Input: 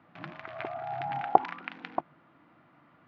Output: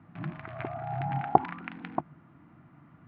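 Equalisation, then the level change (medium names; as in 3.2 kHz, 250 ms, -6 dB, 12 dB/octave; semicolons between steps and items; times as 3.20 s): distance through air 62 m; tone controls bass +14 dB, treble -13 dB; peaking EQ 540 Hz -5.5 dB 0.31 oct; 0.0 dB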